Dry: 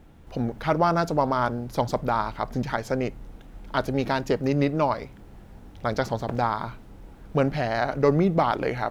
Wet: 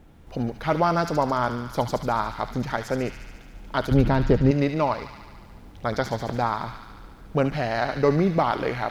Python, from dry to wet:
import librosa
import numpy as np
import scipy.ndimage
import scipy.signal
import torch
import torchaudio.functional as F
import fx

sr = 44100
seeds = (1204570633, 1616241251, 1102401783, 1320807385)

y = fx.riaa(x, sr, side='playback', at=(3.91, 4.51))
y = fx.echo_wet_highpass(y, sr, ms=72, feedback_pct=75, hz=1800.0, wet_db=-6.0)